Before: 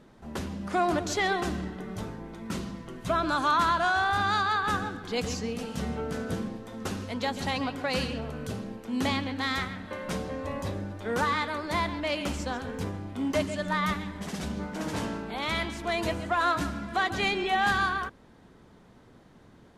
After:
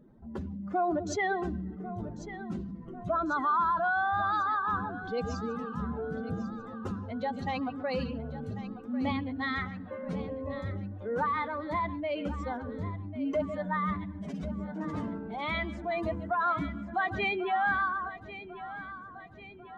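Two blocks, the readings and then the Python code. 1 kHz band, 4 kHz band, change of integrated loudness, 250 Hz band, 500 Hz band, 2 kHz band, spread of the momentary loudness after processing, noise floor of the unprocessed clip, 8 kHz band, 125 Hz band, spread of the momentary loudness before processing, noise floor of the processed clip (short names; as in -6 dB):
-2.0 dB, -12.0 dB, -3.0 dB, -2.0 dB, -2.0 dB, -4.0 dB, 12 LU, -55 dBFS, under -10 dB, -2.5 dB, 11 LU, -47 dBFS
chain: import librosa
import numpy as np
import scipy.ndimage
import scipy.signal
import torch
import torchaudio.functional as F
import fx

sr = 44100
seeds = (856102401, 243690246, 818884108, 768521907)

y = fx.spec_expand(x, sr, power=1.9)
y = fx.echo_feedback(y, sr, ms=1095, feedback_pct=51, wet_db=-14)
y = y * librosa.db_to_amplitude(-2.5)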